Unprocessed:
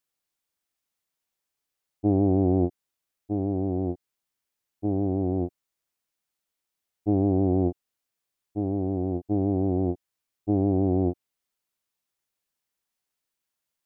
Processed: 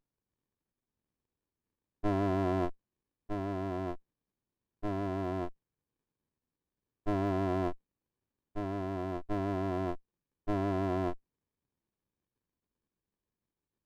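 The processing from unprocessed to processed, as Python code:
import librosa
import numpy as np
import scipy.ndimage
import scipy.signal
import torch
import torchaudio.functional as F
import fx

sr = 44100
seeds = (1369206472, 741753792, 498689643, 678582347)

y = fx.running_max(x, sr, window=65)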